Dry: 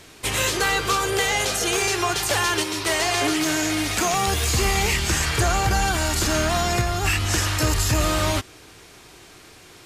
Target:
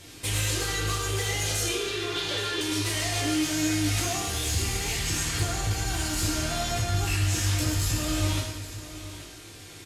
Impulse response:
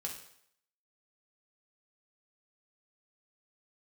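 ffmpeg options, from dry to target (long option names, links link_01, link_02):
-filter_complex "[0:a]asettb=1/sr,asplit=3[link_01][link_02][link_03];[link_01]atrim=end=1.684[link_04];[link_02]atrim=start=1.68:end=2.61,asetpts=PTS-STARTPTS,afade=type=in:duration=0.004:curve=qsin,afade=type=out:start_time=0.926:duration=0.004:curve=qsin,highpass=190,equalizer=frequency=420:width_type=q:width=4:gain=10,equalizer=frequency=750:width_type=q:width=4:gain=-8,equalizer=frequency=3600:width_type=q:width=4:gain=7,lowpass=frequency=4400:width=0.5412,lowpass=frequency=4400:width=1.3066[link_05];[link_03]atrim=start=2.606[link_06];[link_04][link_05]acrossfade=duration=0.004:curve1=hsin:curve2=qsin[link_07];[link_07][link_06]acrossfade=duration=0.004:curve1=qsin:curve2=hsin,asoftclip=type=tanh:threshold=-20dB,acompressor=threshold=-27dB:ratio=6,equalizer=frequency=1000:width_type=o:width=2.4:gain=-7,aecho=1:1:825:0.188[link_08];[1:a]atrim=start_sample=2205,asetrate=26901,aresample=44100[link_09];[link_08][link_09]afir=irnorm=-1:irlink=0"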